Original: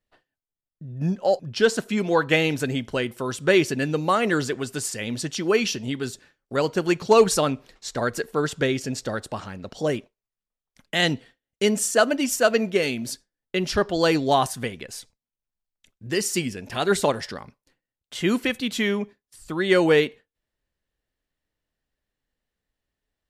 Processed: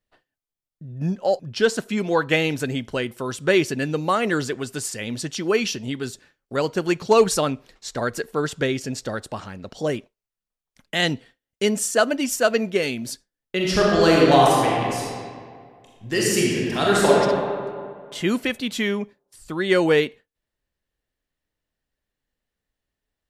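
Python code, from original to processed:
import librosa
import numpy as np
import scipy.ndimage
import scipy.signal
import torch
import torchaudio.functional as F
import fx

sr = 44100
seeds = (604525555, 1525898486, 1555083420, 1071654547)

y = fx.reverb_throw(x, sr, start_s=13.56, length_s=3.56, rt60_s=2.1, drr_db=-4.5)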